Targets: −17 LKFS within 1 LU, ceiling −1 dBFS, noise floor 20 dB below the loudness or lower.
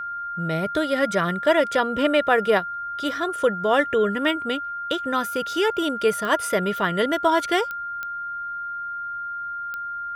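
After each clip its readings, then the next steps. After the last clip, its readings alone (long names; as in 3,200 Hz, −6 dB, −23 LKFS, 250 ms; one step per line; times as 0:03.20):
number of clicks 4; interfering tone 1,400 Hz; level of the tone −28 dBFS; integrated loudness −23.5 LKFS; sample peak −6.0 dBFS; target loudness −17.0 LKFS
→ click removal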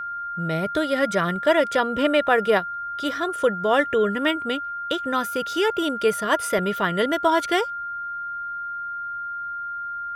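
number of clicks 0; interfering tone 1,400 Hz; level of the tone −28 dBFS
→ notch filter 1,400 Hz, Q 30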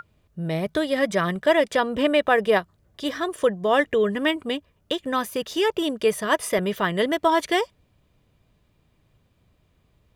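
interfering tone none found; integrated loudness −23.5 LKFS; sample peak −6.5 dBFS; target loudness −17.0 LKFS
→ level +6.5 dB
brickwall limiter −1 dBFS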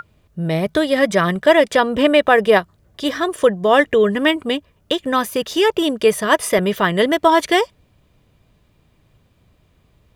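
integrated loudness −17.0 LKFS; sample peak −1.0 dBFS; background noise floor −59 dBFS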